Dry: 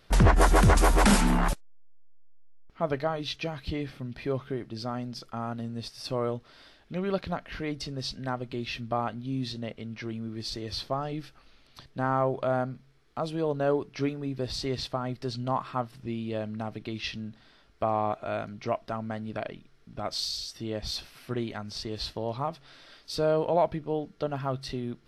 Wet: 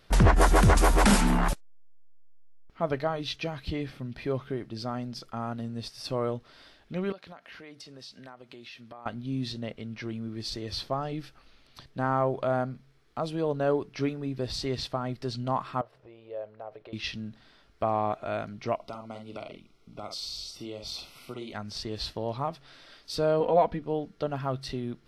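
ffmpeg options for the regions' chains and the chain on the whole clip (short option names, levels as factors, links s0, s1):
-filter_complex "[0:a]asettb=1/sr,asplit=3[s0][s1][s2];[s0]atrim=end=7.124[s3];[s1]atrim=start=7.12:end=9.06,asetpts=PTS-STARTPTS,afade=t=in:d=0.004:c=qsin,afade=t=out:st=1.936:d=0.004:c=qsin,highpass=f=510:p=1,acompressor=threshold=0.00631:ratio=4:attack=3.2:release=140:knee=1:detection=peak[s4];[s2]atrim=start=9.056[s5];[s3][s4]acrossfade=d=0.004:c1=hsin:c2=qsin[s6];[s6][s5]acrossfade=d=0.004:c1=qsin:c2=hsin,asettb=1/sr,asplit=3[s7][s8][s9];[s7]atrim=end=15.814[s10];[s8]atrim=start=15.81:end=16.93,asetpts=PTS-STARTPTS,afade=t=in:d=0.004:c=qsin,afade=t=out:st=1.116:d=0.004:c=qsin,acompressor=threshold=0.0178:ratio=5:attack=3.2:release=140:knee=1:detection=peak,lowpass=f=1000:p=1,lowshelf=f=350:t=q:w=3:g=-13.5[s11];[s9]atrim=start=16.926[s12];[s10][s11]acrossfade=d=0.004:c1=hsin:c2=qsin[s13];[s13][s12]acrossfade=d=0.004:c1=qsin:c2=hsin,asettb=1/sr,asplit=3[s14][s15][s16];[s14]atrim=end=18.754[s17];[s15]atrim=start=18.75:end=21.53,asetpts=PTS-STARTPTS,afade=t=in:d=0.004:c=qsin,afade=t=out:st=2.776:d=0.004:c=qsin,asplit=2[s18][s19];[s19]adelay=48,volume=0.501[s20];[s18][s20]amix=inputs=2:normalize=0,atrim=end_sample=122598,acrossover=split=250|3000[s21][s22][s23];[s21]acompressor=threshold=0.00316:ratio=4[s24];[s22]acompressor=threshold=0.0126:ratio=4[s25];[s23]acompressor=threshold=0.0126:ratio=4[s26];[s24][s25][s26]amix=inputs=3:normalize=0,asuperstop=centerf=1700:order=8:qfactor=3.2[s27];[s16]atrim=start=21.526[s28];[s17][s27]acrossfade=d=0.004:c1=hsin:c2=qsin[s29];[s29][s28]acrossfade=d=0.004:c1=qsin:c2=hsin,asettb=1/sr,asplit=3[s30][s31][s32];[s30]atrim=end=23.404[s33];[s31]atrim=start=23.4:end=23.82,asetpts=PTS-STARTPTS,afade=t=in:d=0.004:c=qsin,afade=t=out:st=0.416:d=0.004:c=qsin,highshelf=f=6000:g=-9.5,aecho=1:1:4.1:0.8,atrim=end_sample=18522[s34];[s32]atrim=start=23.816[s35];[s33][s34]acrossfade=d=0.004:c1=hsin:c2=qsin[s36];[s36][s35]acrossfade=d=0.004:c1=qsin:c2=hsin"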